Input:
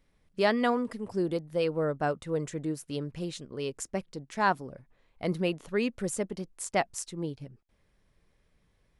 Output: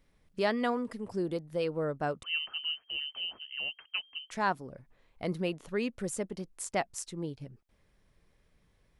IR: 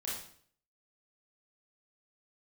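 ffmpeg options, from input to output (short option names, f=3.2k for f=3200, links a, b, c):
-filter_complex "[0:a]asplit=2[a][b];[b]acompressor=threshold=-41dB:ratio=6,volume=-0.5dB[c];[a][c]amix=inputs=2:normalize=0,asettb=1/sr,asplit=3[d][e][f];[d]atrim=end=2.234[g];[e]atrim=start=2.23:end=4.31,asetpts=PTS-STARTPTS,afade=t=in:d=0.004:c=qsin,afade=t=out:st=2.076:d=0.004:c=qsin,lowpass=f=2.7k:t=q:w=0.5098,lowpass=f=2.7k:t=q:w=0.6013,lowpass=f=2.7k:t=q:w=0.9,lowpass=f=2.7k:t=q:w=2.563,afreqshift=-3200[h];[f]atrim=start=4.306[i];[g][h]acrossfade=d=0.004:c1=hsin:c2=qsin[j];[j][i]acrossfade=d=0.004:c1=qsin:c2=hsin,volume=-5dB"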